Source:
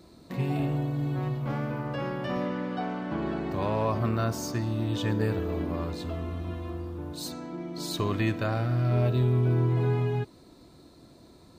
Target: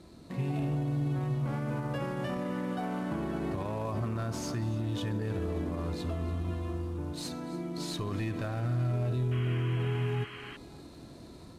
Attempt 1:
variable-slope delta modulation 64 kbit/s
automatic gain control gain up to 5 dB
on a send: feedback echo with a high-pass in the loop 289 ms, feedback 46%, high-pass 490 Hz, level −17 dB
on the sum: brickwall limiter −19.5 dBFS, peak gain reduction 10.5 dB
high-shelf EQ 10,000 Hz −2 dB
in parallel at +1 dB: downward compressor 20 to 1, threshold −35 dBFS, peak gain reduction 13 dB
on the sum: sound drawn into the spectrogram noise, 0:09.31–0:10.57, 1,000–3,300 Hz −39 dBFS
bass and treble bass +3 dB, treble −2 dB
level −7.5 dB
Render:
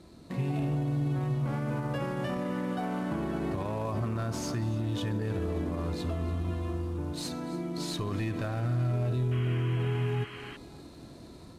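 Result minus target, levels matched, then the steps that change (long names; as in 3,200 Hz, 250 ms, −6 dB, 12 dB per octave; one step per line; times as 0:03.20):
downward compressor: peak gain reduction −9 dB
change: downward compressor 20 to 1, threshold −44.5 dBFS, peak gain reduction 22 dB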